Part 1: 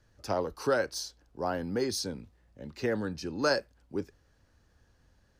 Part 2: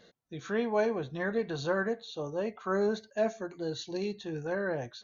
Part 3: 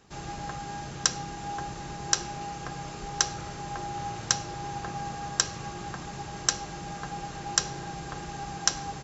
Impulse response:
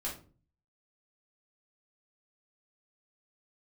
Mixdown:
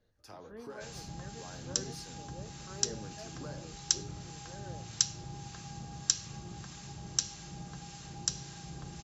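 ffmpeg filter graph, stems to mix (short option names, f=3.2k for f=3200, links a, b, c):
-filter_complex "[0:a]alimiter=level_in=0.5dB:limit=-24dB:level=0:latency=1:release=323,volume=-0.5dB,volume=-14.5dB,asplit=2[a][b];[b]volume=-4dB[c];[1:a]volume=-17.5dB[d];[2:a]highpass=51,acrossover=split=240|3000[e][f][g];[f]acompressor=threshold=-58dB:ratio=2[h];[e][h][g]amix=inputs=3:normalize=0,adelay=700,volume=-1dB[i];[3:a]atrim=start_sample=2205[j];[c][j]afir=irnorm=-1:irlink=0[k];[a][d][i][k]amix=inputs=4:normalize=0,acrossover=split=970[l][m];[l]aeval=exprs='val(0)*(1-0.5/2+0.5/2*cos(2*PI*1.7*n/s))':c=same[n];[m]aeval=exprs='val(0)*(1-0.5/2-0.5/2*cos(2*PI*1.7*n/s))':c=same[o];[n][o]amix=inputs=2:normalize=0"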